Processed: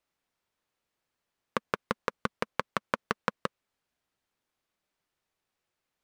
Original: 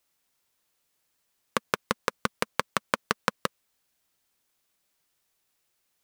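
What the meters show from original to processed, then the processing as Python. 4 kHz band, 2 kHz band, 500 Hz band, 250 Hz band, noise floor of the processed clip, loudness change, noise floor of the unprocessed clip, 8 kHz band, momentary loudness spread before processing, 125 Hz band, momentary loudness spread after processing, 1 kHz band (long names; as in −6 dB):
−8.0 dB, −4.5 dB, −2.0 dB, −2.0 dB, below −85 dBFS, −4.0 dB, −76 dBFS, −12.5 dB, 5 LU, −2.0 dB, 5 LU, −3.0 dB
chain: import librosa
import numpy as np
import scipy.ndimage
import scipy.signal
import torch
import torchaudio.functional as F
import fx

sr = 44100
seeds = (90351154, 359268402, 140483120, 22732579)

y = fx.lowpass(x, sr, hz=2100.0, slope=6)
y = y * 10.0 ** (-2.0 / 20.0)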